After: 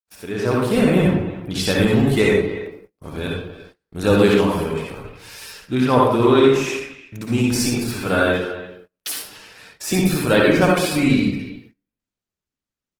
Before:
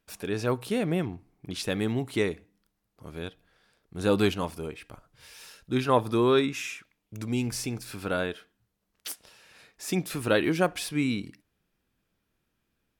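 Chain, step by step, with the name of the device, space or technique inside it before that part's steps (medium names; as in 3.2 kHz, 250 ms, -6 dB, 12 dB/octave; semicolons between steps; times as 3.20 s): speakerphone in a meeting room (reverberation RT60 0.70 s, pre-delay 53 ms, DRR -2 dB; speakerphone echo 290 ms, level -14 dB; level rider gain up to 8.5 dB; gate -43 dBFS, range -27 dB; Opus 16 kbps 48 kHz)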